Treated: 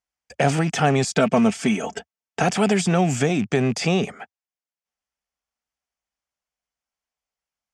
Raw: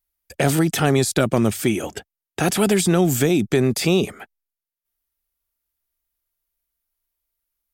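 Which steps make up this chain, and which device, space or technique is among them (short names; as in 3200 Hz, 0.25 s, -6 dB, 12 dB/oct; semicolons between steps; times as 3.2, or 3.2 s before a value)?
car door speaker with a rattle (rattling part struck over -26 dBFS, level -27 dBFS; speaker cabinet 89–7100 Hz, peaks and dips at 91 Hz -8 dB, 340 Hz -9 dB, 750 Hz +5 dB, 3900 Hz -8 dB); 1.04–2.43 comb 4.5 ms, depth 63%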